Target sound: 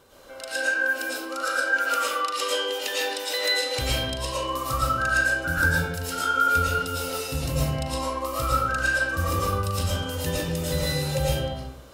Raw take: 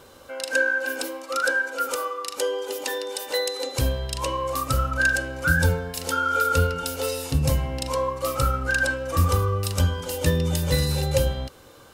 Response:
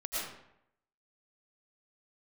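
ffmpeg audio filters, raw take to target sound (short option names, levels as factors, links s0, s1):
-filter_complex "[0:a]asettb=1/sr,asplit=3[s0][s1][s2];[s0]atrim=end=1.654[s3];[s1]atrim=start=1.65:end=4.05,asetpts=PTS-STARTPTS,afade=t=in:d=0.004:c=qsin,afade=t=out:st=2.396:d=0.004:c=qsin,equalizer=f=2600:t=o:w=2.1:g=8[s4];[s2]atrim=start=4.046[s5];[s3][s4]acrossfade=d=0.004:c1=hsin:c2=qsin[s6];[s6][s5]acrossfade=d=0.004:c1=qsin:c2=hsin[s7];[1:a]atrim=start_sample=2205[s8];[s7][s8]afir=irnorm=-1:irlink=0,volume=0.631"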